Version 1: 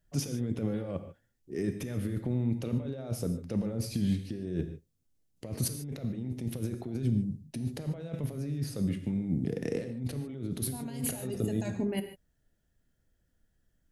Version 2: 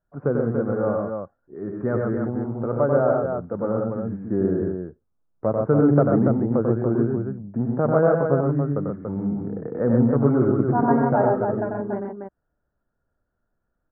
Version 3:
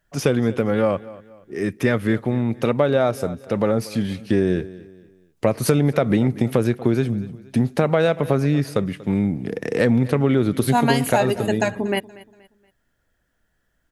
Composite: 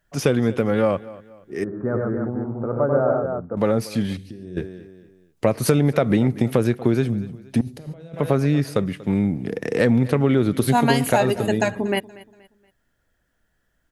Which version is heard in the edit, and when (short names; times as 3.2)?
3
1.64–3.57 from 2
4.17–4.57 from 1
7.61–8.16 from 1